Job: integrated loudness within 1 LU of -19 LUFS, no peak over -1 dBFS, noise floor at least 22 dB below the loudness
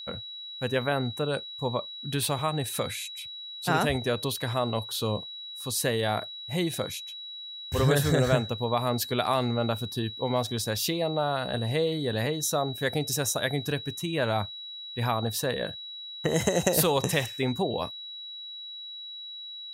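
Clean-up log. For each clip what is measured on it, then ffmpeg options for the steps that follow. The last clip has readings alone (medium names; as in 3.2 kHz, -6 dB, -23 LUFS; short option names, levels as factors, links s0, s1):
steady tone 3.9 kHz; tone level -38 dBFS; loudness -29.0 LUFS; peak level -9.5 dBFS; loudness target -19.0 LUFS
-> -af "bandreject=f=3900:w=30"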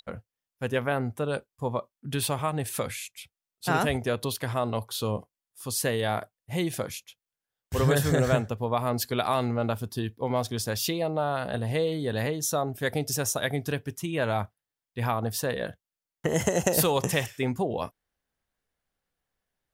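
steady tone not found; loudness -28.5 LUFS; peak level -9.0 dBFS; loudness target -19.0 LUFS
-> -af "volume=2.99,alimiter=limit=0.891:level=0:latency=1"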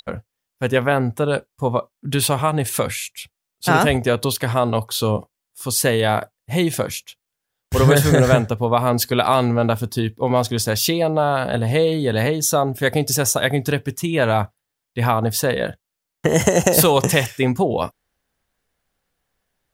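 loudness -19.0 LUFS; peak level -1.0 dBFS; noise floor -82 dBFS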